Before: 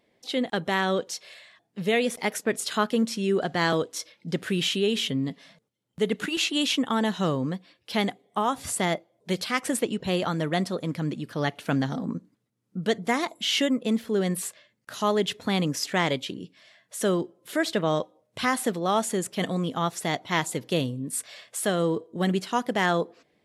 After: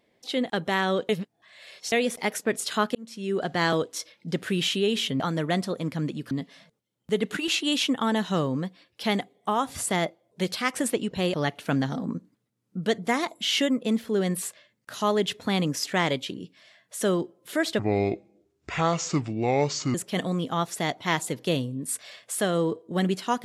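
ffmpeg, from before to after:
-filter_complex "[0:a]asplit=9[a][b][c][d][e][f][g][h][i];[a]atrim=end=1.092[j];[b]atrim=start=1.088:end=1.922,asetpts=PTS-STARTPTS,areverse[k];[c]atrim=start=1.918:end=2.95,asetpts=PTS-STARTPTS,afade=t=out:st=1.028:d=0.004:c=hsin[l];[d]atrim=start=2.95:end=5.202,asetpts=PTS-STARTPTS,afade=t=in:d=0.56[m];[e]atrim=start=10.228:end=11.342[n];[f]atrim=start=5.198:end=10.232[o];[g]atrim=start=11.338:end=17.794[p];[h]atrim=start=17.79:end=19.19,asetpts=PTS-STARTPTS,asetrate=28665,aresample=44100[q];[i]atrim=start=19.186[r];[j][k]acrossfade=d=0.004:c1=hsin:c2=hsin[s];[l][m]concat=n=2:v=0:a=1[t];[s][t]acrossfade=d=0.004:c1=hsin:c2=hsin[u];[u][n]acrossfade=d=0.004:c1=hsin:c2=hsin[v];[v][o]acrossfade=d=0.004:c1=hsin:c2=hsin[w];[w][p]acrossfade=d=0.004:c1=hsin:c2=hsin[x];[x][q]acrossfade=d=0.004:c1=hsin:c2=hsin[y];[y][r]acrossfade=d=0.004:c1=hsin:c2=hsin"

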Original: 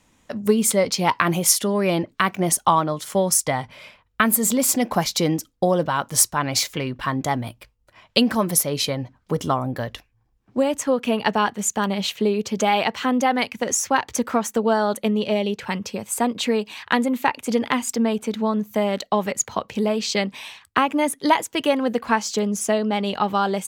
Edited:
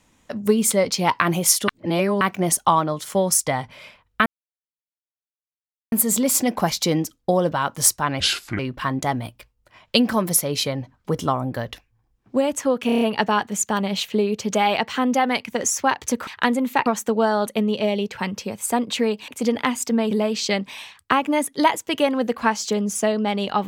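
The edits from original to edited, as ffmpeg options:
-filter_complex "[0:a]asplit=15[a][b][c][d][e][f][g][h][i][j][k][l][m][n][o];[a]atrim=end=1.682[p];[b]atrim=start=1.678:end=2.212,asetpts=PTS-STARTPTS,areverse[q];[c]atrim=start=2.208:end=4.26,asetpts=PTS-STARTPTS,afade=t=out:st=2.048:d=0.004:c=hsin,apad=pad_dur=1.66[r];[d]atrim=start=4.26:end=6.544,asetpts=PTS-STARTPTS,afade=t=in:d=0.004:c=hsin[s];[e]atrim=start=6.54:end=6.81,asetpts=PTS-STARTPTS,asetrate=30429,aresample=44100[t];[f]atrim=start=6.806:end=11.112[u];[g]atrim=start=11.078:end=11.112[v];[h]atrim=start=11.078:end=11.112[w];[i]atrim=start=11.078:end=11.112[x];[j]atrim=start=11.078:end=11.112[y];[k]atrim=start=11.078:end=14.342[z];[l]atrim=start=16.758:end=17.352[aa];[m]atrim=start=14.338:end=16.762[ab];[n]atrim=start=17.348:end=18.182[ac];[o]atrim=start=19.768[ad];[p][q]acrossfade=d=0.004:c1=hsin:c2=hsin[ae];[r][s]concat=n=2:v=0:a=1[af];[ae][af]acrossfade=d=0.004:c1=hsin:c2=hsin[ag];[ag][t]acrossfade=d=0.004:c1=hsin:c2=hsin[ah];[ah][u]acrossfade=d=0.004:c1=hsin:c2=hsin[ai];[ai][v]acrossfade=d=0.004:c1=hsin:c2=hsin[aj];[aj][w]acrossfade=d=0.004:c1=hsin:c2=hsin[ak];[ak][x]acrossfade=d=0.004:c1=hsin:c2=hsin[al];[al][y]acrossfade=d=0.004:c1=hsin:c2=hsin[am];[am][z]acrossfade=d=0.004:c1=hsin:c2=hsin[an];[an][aa]acrossfade=d=0.004:c1=hsin:c2=hsin[ao];[ao][ab]acrossfade=d=0.004:c1=hsin:c2=hsin[ap];[ap][ac]acrossfade=d=0.004:c1=hsin:c2=hsin[aq];[aq][ad]acrossfade=d=0.004:c1=hsin:c2=hsin"

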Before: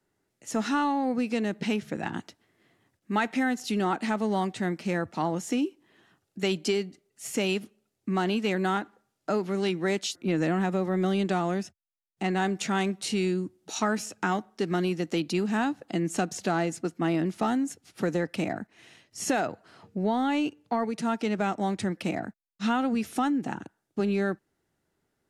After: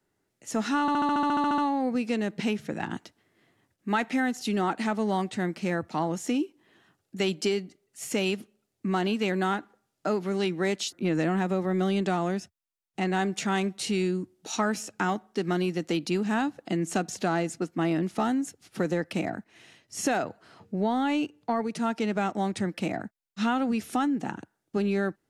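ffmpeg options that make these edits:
-filter_complex "[0:a]asplit=12[a][b][c][d][e][f][g][h][i][j][k][l];[a]atrim=end=0.882[m];[b]atrim=start=0.808:end=0.882[n];[c]atrim=start=0.808:end=0.882[o];[d]atrim=start=0.808:end=0.882[p];[e]atrim=start=0.808:end=0.882[q];[f]atrim=start=0.808:end=0.882[r];[g]atrim=start=0.808:end=0.882[s];[h]atrim=start=0.808:end=0.882[t];[i]atrim=start=0.808:end=0.882[u];[j]atrim=start=0.808:end=0.882[v];[k]atrim=start=0.808:end=0.882[w];[l]atrim=start=0.808[x];[m][n]acrossfade=d=0.004:c1=hsin:c2=hsin[y];[y][o]acrossfade=d=0.004:c1=hsin:c2=hsin[z];[z][p]acrossfade=d=0.004:c1=hsin:c2=hsin[aa];[aa][q]acrossfade=d=0.004:c1=hsin:c2=hsin[ab];[ab][r]acrossfade=d=0.004:c1=hsin:c2=hsin[ac];[ac][s]acrossfade=d=0.004:c1=hsin:c2=hsin[ad];[ad][t]acrossfade=d=0.004:c1=hsin:c2=hsin[ae];[ae][u]acrossfade=d=0.004:c1=hsin:c2=hsin[af];[af][v]acrossfade=d=0.004:c1=hsin:c2=hsin[ag];[ag][w]acrossfade=d=0.004:c1=hsin:c2=hsin[ah];[ah][x]acrossfade=d=0.004:c1=hsin:c2=hsin"

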